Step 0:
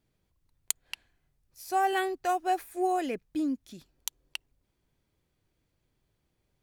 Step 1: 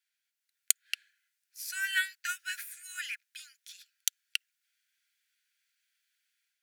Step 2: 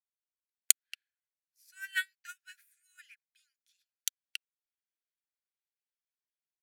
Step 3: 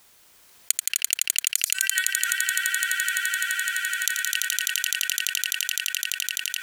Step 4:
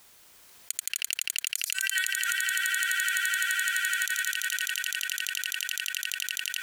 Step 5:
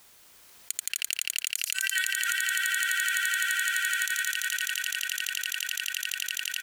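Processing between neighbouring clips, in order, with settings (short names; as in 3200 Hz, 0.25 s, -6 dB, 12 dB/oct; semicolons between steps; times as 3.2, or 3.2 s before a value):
Chebyshev high-pass 1400 Hz, order 8; AGC gain up to 6 dB
upward expander 2.5:1, over -40 dBFS; gain +2.5 dB
on a send: swelling echo 85 ms, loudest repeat 8, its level -7 dB; on the sum: fast leveller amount 70%
limiter -13 dBFS, peak gain reduction 10.5 dB
echo 0.23 s -12 dB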